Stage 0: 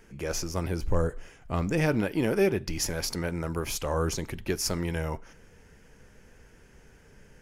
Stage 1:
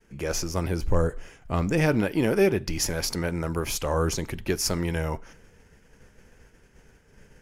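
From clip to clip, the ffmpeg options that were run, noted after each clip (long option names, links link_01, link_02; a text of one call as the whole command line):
ffmpeg -i in.wav -af "agate=range=-33dB:threshold=-49dB:ratio=3:detection=peak,volume=3dB" out.wav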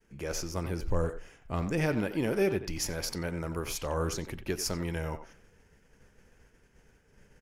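ffmpeg -i in.wav -filter_complex "[0:a]asplit=2[link_01][link_02];[link_02]adelay=90,highpass=300,lowpass=3400,asoftclip=type=hard:threshold=-18dB,volume=-10dB[link_03];[link_01][link_03]amix=inputs=2:normalize=0,volume=-6.5dB" out.wav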